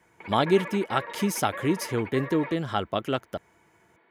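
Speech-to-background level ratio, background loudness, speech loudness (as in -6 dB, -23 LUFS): 11.5 dB, -38.5 LUFS, -27.0 LUFS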